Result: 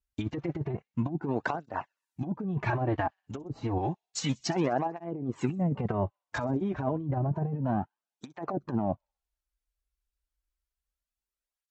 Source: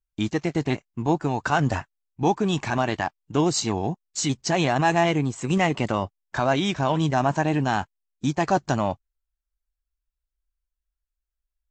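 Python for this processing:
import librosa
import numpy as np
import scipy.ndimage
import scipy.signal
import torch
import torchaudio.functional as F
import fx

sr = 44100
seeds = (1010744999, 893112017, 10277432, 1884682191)

p1 = fx.low_shelf(x, sr, hz=440.0, db=-6.0, at=(3.78, 4.98))
p2 = fx.env_lowpass_down(p1, sr, base_hz=330.0, full_db=-17.0)
p3 = fx.over_compress(p2, sr, threshold_db=-26.0, ratio=-0.5)
p4 = fx.high_shelf(p3, sr, hz=2900.0, db=9.0, at=(1.21, 2.46))
p5 = p4 + fx.echo_wet_highpass(p4, sr, ms=63, feedback_pct=61, hz=5300.0, wet_db=-19, dry=0)
y = fx.flanger_cancel(p5, sr, hz=0.3, depth_ms=6.4)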